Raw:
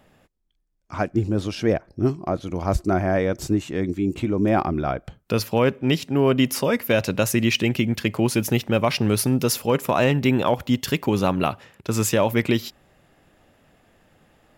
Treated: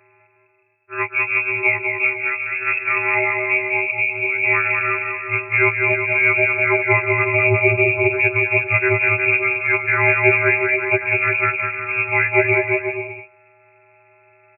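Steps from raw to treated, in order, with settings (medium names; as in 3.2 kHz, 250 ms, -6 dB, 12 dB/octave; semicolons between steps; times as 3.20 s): partials quantised in pitch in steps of 2 st; peaking EQ 740 Hz -12 dB 0.26 oct; bouncing-ball echo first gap 200 ms, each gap 0.8×, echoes 5; frequency inversion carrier 2.6 kHz; peaking EQ 360 Hz +11 dB 1.5 oct; trim +1 dB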